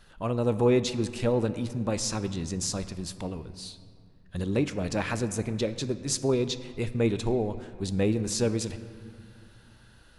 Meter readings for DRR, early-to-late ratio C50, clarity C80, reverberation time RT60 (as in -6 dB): 11.5 dB, 12.5 dB, 13.5 dB, 2.2 s